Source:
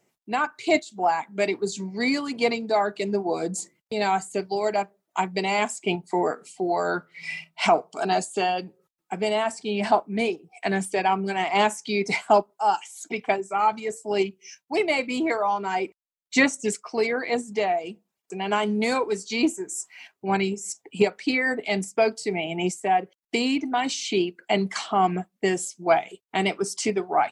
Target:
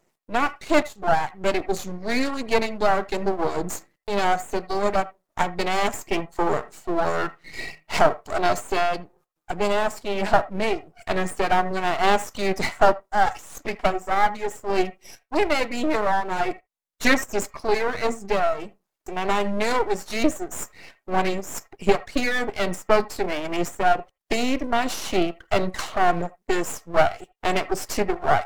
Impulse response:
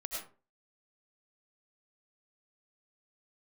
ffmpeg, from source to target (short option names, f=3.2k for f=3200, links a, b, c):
-filter_complex "[0:a]aeval=exprs='max(val(0),0)':c=same,asetrate=42336,aresample=44100,asplit=2[a][b];[b]bass=f=250:g=-13,treble=f=4k:g=-5[c];[1:a]atrim=start_sample=2205,afade=t=out:st=0.13:d=0.01,atrim=end_sample=6174,lowpass=2k[d];[c][d]afir=irnorm=-1:irlink=0,volume=-2dB[e];[a][e]amix=inputs=2:normalize=0,volume=3.5dB"